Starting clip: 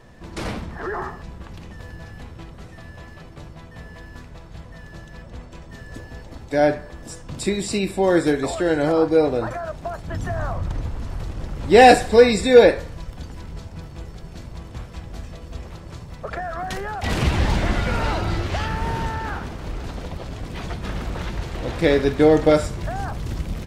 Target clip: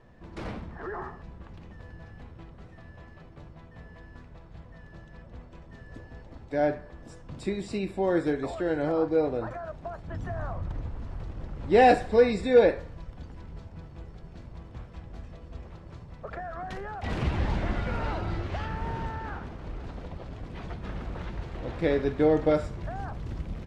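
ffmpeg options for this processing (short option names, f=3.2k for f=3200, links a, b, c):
-af "aemphasis=mode=reproduction:type=75fm,volume=-8.5dB"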